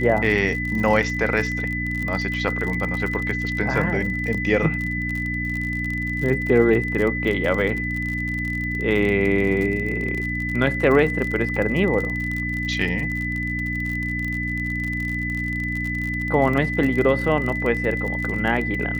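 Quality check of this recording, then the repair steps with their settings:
crackle 44 per s -26 dBFS
hum 60 Hz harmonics 5 -28 dBFS
whine 2 kHz -26 dBFS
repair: de-click; de-hum 60 Hz, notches 5; band-stop 2 kHz, Q 30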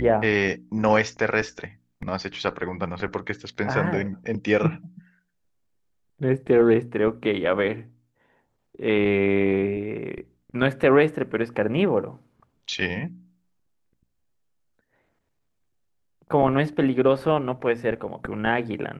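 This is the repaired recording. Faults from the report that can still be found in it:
nothing left

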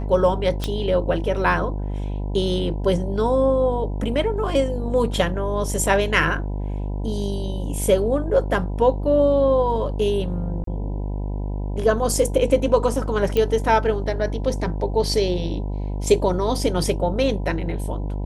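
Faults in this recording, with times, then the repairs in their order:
buzz 50 Hz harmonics 20 -26 dBFS
0.64 s: pop -10 dBFS
10.64–10.67 s: dropout 33 ms
13.37 s: pop -10 dBFS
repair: de-click; de-hum 50 Hz, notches 20; interpolate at 10.64 s, 33 ms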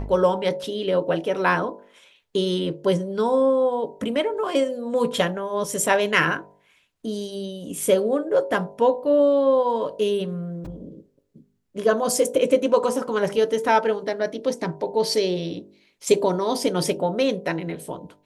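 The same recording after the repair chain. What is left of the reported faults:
nothing left

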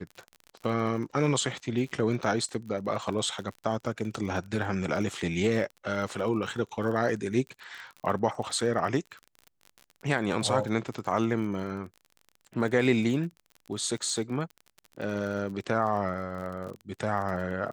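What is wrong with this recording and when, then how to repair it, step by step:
crackle 34 per s -36 dBFS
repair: de-click

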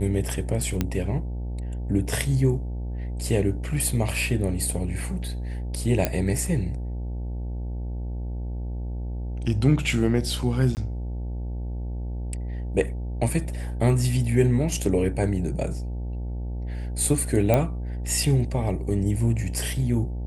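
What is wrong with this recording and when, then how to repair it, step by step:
buzz 60 Hz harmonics 15 -30 dBFS
0.81 s: pop -10 dBFS
6.05 s: pop -7 dBFS
10.75–10.77 s: dropout 19 ms
17.54 s: pop -8 dBFS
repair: de-click; de-hum 60 Hz, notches 15; interpolate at 10.75 s, 19 ms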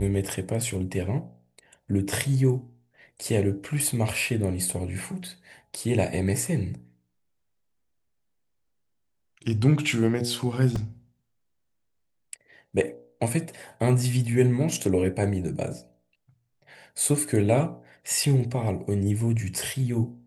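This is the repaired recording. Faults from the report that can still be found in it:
nothing left

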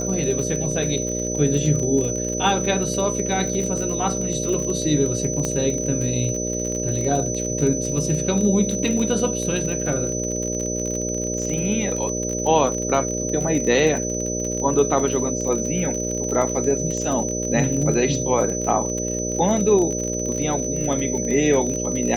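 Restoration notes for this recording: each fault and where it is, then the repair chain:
buzz 60 Hz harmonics 10 -27 dBFS
crackle 37 per s -25 dBFS
whine 6 kHz -27 dBFS
5.45 s: pop -11 dBFS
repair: de-click; band-stop 6 kHz, Q 30; de-hum 60 Hz, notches 10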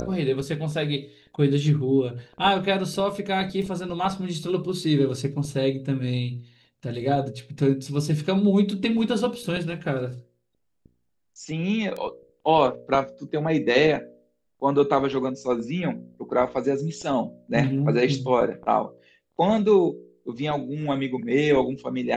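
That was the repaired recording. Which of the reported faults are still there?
nothing left

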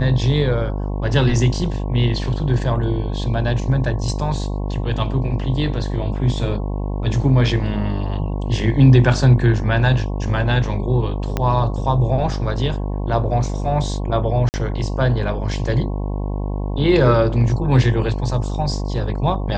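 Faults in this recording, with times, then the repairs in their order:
buzz 50 Hz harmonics 22 -23 dBFS
11.37 s: pop -7 dBFS
14.49–14.54 s: dropout 49 ms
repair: de-click; de-hum 50 Hz, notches 22; interpolate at 14.49 s, 49 ms

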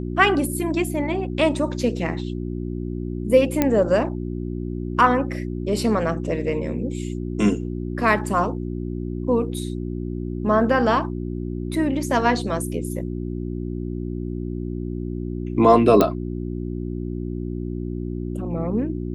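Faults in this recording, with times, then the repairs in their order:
hum 60 Hz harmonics 6 -28 dBFS
3.62 s: pop -5 dBFS
16.01 s: pop -4 dBFS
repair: de-click; de-hum 60 Hz, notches 6

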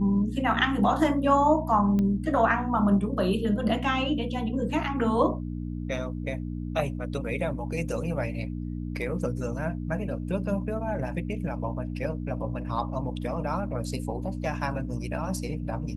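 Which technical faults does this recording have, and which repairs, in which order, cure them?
hum 60 Hz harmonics 5 -33 dBFS
1.99 s: pop -18 dBFS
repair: de-click; de-hum 60 Hz, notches 5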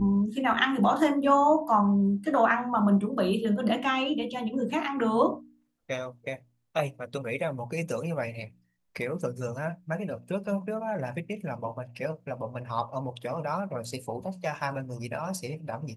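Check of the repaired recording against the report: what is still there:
nothing left

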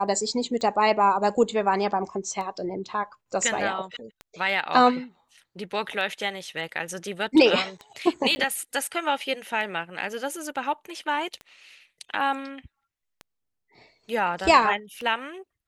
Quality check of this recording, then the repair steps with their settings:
tick 33 1/3 rpm -23 dBFS
8.35–8.36 s: dropout 10 ms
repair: de-click; interpolate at 8.35 s, 10 ms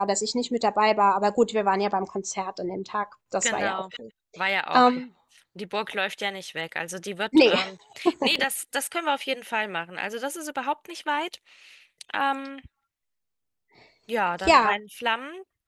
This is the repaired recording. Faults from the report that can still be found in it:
nothing left

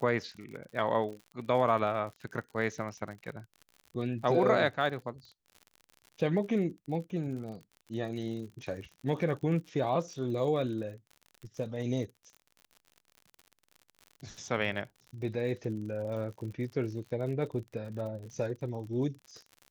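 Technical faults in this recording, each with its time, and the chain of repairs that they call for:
crackle 51 per s -41 dBFS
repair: de-click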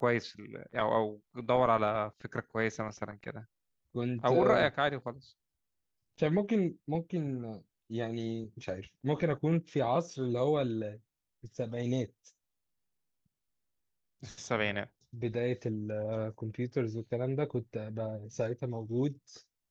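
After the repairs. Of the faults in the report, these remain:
nothing left

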